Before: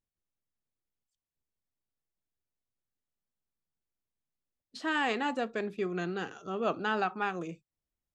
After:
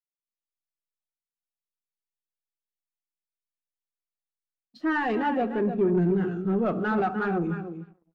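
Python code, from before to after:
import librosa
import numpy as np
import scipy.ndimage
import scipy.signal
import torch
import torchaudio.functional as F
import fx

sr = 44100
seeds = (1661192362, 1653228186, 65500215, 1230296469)

y = fx.lowpass(x, sr, hz=3400.0, slope=6)
y = fx.low_shelf(y, sr, hz=150.0, db=10.0)
y = fx.notch(y, sr, hz=810.0, q=25.0)
y = fx.echo_feedback(y, sr, ms=300, feedback_pct=17, wet_db=-9)
y = fx.room_shoebox(y, sr, seeds[0], volume_m3=2300.0, walls='furnished', distance_m=0.98)
y = fx.leveller(y, sr, passes=3)
y = fx.spectral_expand(y, sr, expansion=1.5)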